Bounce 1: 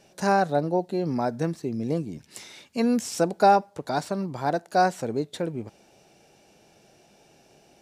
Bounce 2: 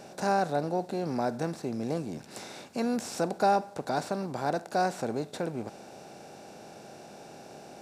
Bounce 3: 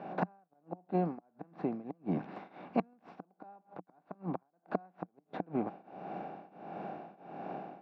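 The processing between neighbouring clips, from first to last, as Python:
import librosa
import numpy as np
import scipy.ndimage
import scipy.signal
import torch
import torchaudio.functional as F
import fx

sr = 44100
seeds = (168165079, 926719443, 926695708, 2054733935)

y1 = fx.bin_compress(x, sr, power=0.6)
y1 = y1 * 10.0 ** (-8.0 / 20.0)
y2 = fx.gate_flip(y1, sr, shuts_db=-21.0, range_db=-38)
y2 = fx.tremolo_shape(y2, sr, shape='triangle', hz=1.5, depth_pct=95)
y2 = fx.cabinet(y2, sr, low_hz=110.0, low_slope=12, high_hz=2600.0, hz=(120.0, 180.0, 300.0, 740.0, 1100.0), db=(-4, 9, 7, 8, 8))
y2 = y2 * 10.0 ** (2.5 / 20.0)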